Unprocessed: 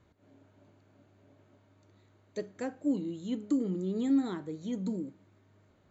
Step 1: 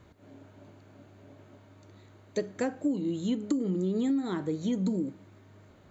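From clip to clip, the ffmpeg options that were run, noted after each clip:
-af "acompressor=threshold=-34dB:ratio=12,volume=9dB"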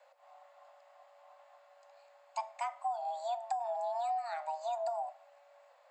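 -af "afreqshift=470,volume=-7dB"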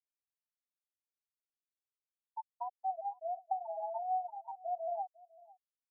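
-filter_complex "[0:a]flanger=delay=1.1:depth=4.4:regen=63:speed=0.59:shape=sinusoidal,afftfilt=real='re*gte(hypot(re,im),0.0631)':imag='im*gte(hypot(re,im),0.0631)':win_size=1024:overlap=0.75,asplit=2[a][b];[b]adelay=501.5,volume=-22dB,highshelf=f=4k:g=-11.3[c];[a][c]amix=inputs=2:normalize=0,volume=2.5dB"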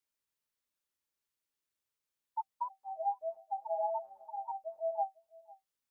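-af "asuperstop=centerf=720:order=20:qfactor=6.9,volume=6dB"

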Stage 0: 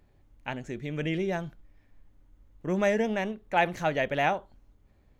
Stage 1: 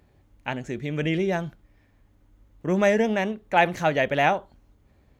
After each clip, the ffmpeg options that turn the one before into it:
-af "highpass=46,volume=5dB"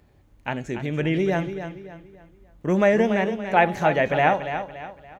-filter_complex "[0:a]bandreject=f=277.8:t=h:w=4,bandreject=f=555.6:t=h:w=4,bandreject=f=833.4:t=h:w=4,bandreject=f=1.1112k:t=h:w=4,bandreject=f=1.389k:t=h:w=4,bandreject=f=1.6668k:t=h:w=4,bandreject=f=1.9446k:t=h:w=4,bandreject=f=2.2224k:t=h:w=4,bandreject=f=2.5002k:t=h:w=4,bandreject=f=2.778k:t=h:w=4,bandreject=f=3.0558k:t=h:w=4,bandreject=f=3.3336k:t=h:w=4,bandreject=f=3.6114k:t=h:w=4,bandreject=f=3.8892k:t=h:w=4,bandreject=f=4.167k:t=h:w=4,bandreject=f=4.4448k:t=h:w=4,bandreject=f=4.7226k:t=h:w=4,bandreject=f=5.0004k:t=h:w=4,bandreject=f=5.2782k:t=h:w=4,bandreject=f=5.556k:t=h:w=4,bandreject=f=5.8338k:t=h:w=4,bandreject=f=6.1116k:t=h:w=4,bandreject=f=6.3894k:t=h:w=4,bandreject=f=6.6672k:t=h:w=4,bandreject=f=6.945k:t=h:w=4,bandreject=f=7.2228k:t=h:w=4,bandreject=f=7.5006k:t=h:w=4,bandreject=f=7.7784k:t=h:w=4,bandreject=f=8.0562k:t=h:w=4,bandreject=f=8.334k:t=h:w=4,bandreject=f=8.6118k:t=h:w=4,bandreject=f=8.8896k:t=h:w=4,bandreject=f=9.1674k:t=h:w=4,bandreject=f=9.4452k:t=h:w=4,bandreject=f=9.723k:t=h:w=4,bandreject=f=10.0008k:t=h:w=4,bandreject=f=10.2786k:t=h:w=4,asplit=2[a][b];[b]adelay=285,lowpass=f=4.7k:p=1,volume=-9.5dB,asplit=2[c][d];[d]adelay=285,lowpass=f=4.7k:p=1,volume=0.38,asplit=2[e][f];[f]adelay=285,lowpass=f=4.7k:p=1,volume=0.38,asplit=2[g][h];[h]adelay=285,lowpass=f=4.7k:p=1,volume=0.38[i];[c][e][g][i]amix=inputs=4:normalize=0[j];[a][j]amix=inputs=2:normalize=0,acrossover=split=2700[k][l];[l]acompressor=threshold=-42dB:ratio=4:attack=1:release=60[m];[k][m]amix=inputs=2:normalize=0,volume=2dB"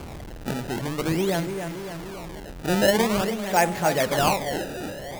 -af "aeval=exprs='val(0)+0.5*0.0398*sgn(val(0))':c=same,bandreject=f=50:t=h:w=6,bandreject=f=100:t=h:w=6,bandreject=f=150:t=h:w=6,acrusher=samples=23:mix=1:aa=0.000001:lfo=1:lforange=36.8:lforate=0.47,volume=-3dB"

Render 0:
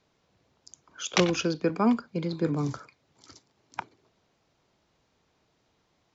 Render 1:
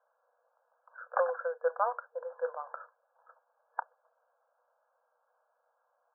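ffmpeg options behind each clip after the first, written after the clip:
-af "afftfilt=real='re*between(b*sr/4096,470,1700)':imag='im*between(b*sr/4096,470,1700)':win_size=4096:overlap=0.75"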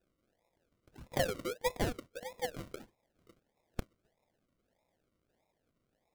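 -af "acrusher=samples=41:mix=1:aa=0.000001:lfo=1:lforange=24.6:lforate=1.6,volume=-3.5dB"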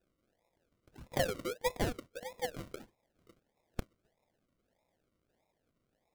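-af anull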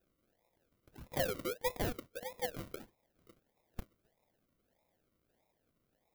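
-af "asoftclip=type=tanh:threshold=-27dB,aexciter=amount=1.6:drive=7.6:freq=11k"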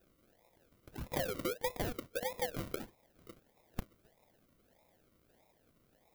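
-af "acompressor=threshold=-41dB:ratio=16,volume=8.5dB"

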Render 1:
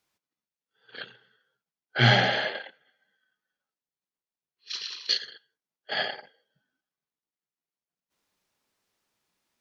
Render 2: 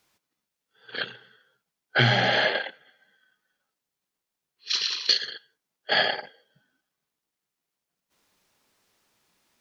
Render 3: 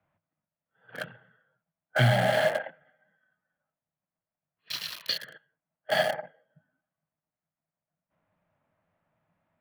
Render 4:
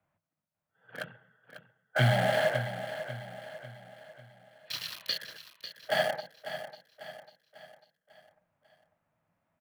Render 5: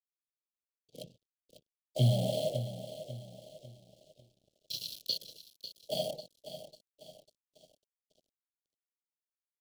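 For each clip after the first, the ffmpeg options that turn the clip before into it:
-af "acompressor=threshold=-26dB:ratio=10,volume=9dB"
-filter_complex "[0:a]highshelf=f=5.3k:g=-12,acrossover=split=150|790|2400[a][b][c][d];[d]aeval=exprs='val(0)*gte(abs(val(0)),0.0251)':c=same[e];[a][b][c][e]amix=inputs=4:normalize=0,equalizer=f=100:t=o:w=0.33:g=12,equalizer=f=160:t=o:w=0.33:g=12,equalizer=f=400:t=o:w=0.33:g=-12,equalizer=f=630:t=o:w=0.33:g=10,volume=-4dB"
-af "aecho=1:1:546|1092|1638|2184|2730:0.282|0.13|0.0596|0.0274|0.0126,volume=-2.5dB"
-af "aeval=exprs='sgn(val(0))*max(abs(val(0))-0.00188,0)':c=same,asuperstop=centerf=1400:order=8:qfactor=0.51"

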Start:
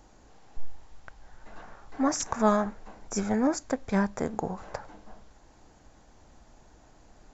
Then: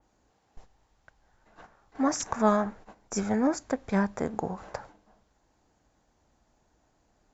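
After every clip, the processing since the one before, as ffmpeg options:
-af "highpass=f=46:p=1,agate=range=-11dB:threshold=-46dB:ratio=16:detection=peak,adynamicequalizer=threshold=0.00355:dfrequency=3600:dqfactor=0.7:tfrequency=3600:tqfactor=0.7:attack=5:release=100:ratio=0.375:range=2.5:mode=cutabove:tftype=highshelf"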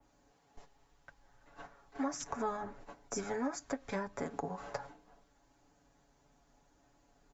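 -filter_complex "[0:a]aecho=1:1:7.1:0.79,acrossover=split=170|670[a][b][c];[a]acompressor=threshold=-50dB:ratio=4[d];[b]acompressor=threshold=-38dB:ratio=4[e];[c]acompressor=threshold=-39dB:ratio=4[f];[d][e][f]amix=inputs=3:normalize=0,flanger=delay=3.2:depth=1.7:regen=-70:speed=0.73:shape=triangular,volume=2.5dB"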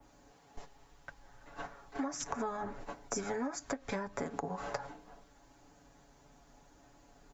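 -af "acompressor=threshold=-42dB:ratio=4,volume=7.5dB"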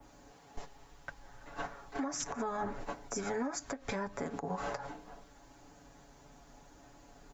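-af "alimiter=level_in=6.5dB:limit=-24dB:level=0:latency=1:release=128,volume=-6.5dB,volume=4dB"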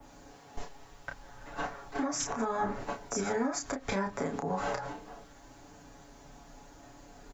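-filter_complex "[0:a]asplit=2[a][b];[b]adelay=31,volume=-5.5dB[c];[a][c]amix=inputs=2:normalize=0,volume=3.5dB"

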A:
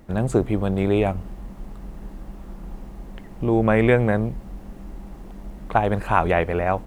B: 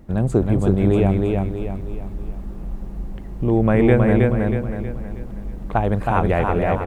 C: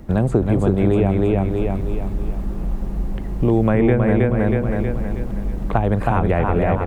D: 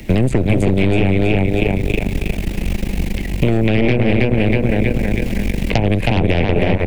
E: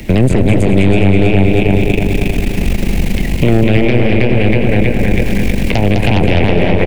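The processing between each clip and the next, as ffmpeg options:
-filter_complex "[0:a]lowshelf=f=430:g=8.5,asplit=2[a][b];[b]aecho=0:1:319|638|957|1276|1595|1914:0.708|0.304|0.131|0.0563|0.0242|0.0104[c];[a][c]amix=inputs=2:normalize=0,volume=-4dB"
-filter_complex "[0:a]acrossover=split=300|2800[a][b][c];[a]acompressor=threshold=-24dB:ratio=4[d];[b]acompressor=threshold=-26dB:ratio=4[e];[c]acompressor=threshold=-55dB:ratio=4[f];[d][e][f]amix=inputs=3:normalize=0,volume=7dB"
-filter_complex "[0:a]aeval=exprs='0.891*(cos(1*acos(clip(val(0)/0.891,-1,1)))-cos(1*PI/2))+0.141*(cos(8*acos(clip(val(0)/0.891,-1,1)))-cos(8*PI/2))':c=same,acrossover=split=87|800[a][b][c];[a]acompressor=threshold=-22dB:ratio=4[d];[b]acompressor=threshold=-17dB:ratio=4[e];[c]acompressor=threshold=-40dB:ratio=4[f];[d][e][f]amix=inputs=3:normalize=0,highshelf=f=1.7k:t=q:w=3:g=11,volume=5dB"
-af "aecho=1:1:206|412|618|824|1030|1236:0.447|0.21|0.0987|0.0464|0.0218|0.0102,alimiter=level_in=6.5dB:limit=-1dB:release=50:level=0:latency=1,volume=-1dB"

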